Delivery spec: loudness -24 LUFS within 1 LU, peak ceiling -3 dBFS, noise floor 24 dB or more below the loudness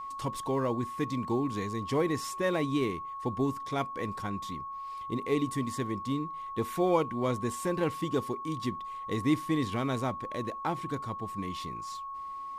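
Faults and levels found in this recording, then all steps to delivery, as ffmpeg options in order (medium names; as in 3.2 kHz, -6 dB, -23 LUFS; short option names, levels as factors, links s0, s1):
steady tone 1.1 kHz; tone level -37 dBFS; loudness -32.5 LUFS; peak level -14.5 dBFS; loudness target -24.0 LUFS
-> -af "bandreject=f=1100:w=30"
-af "volume=2.66"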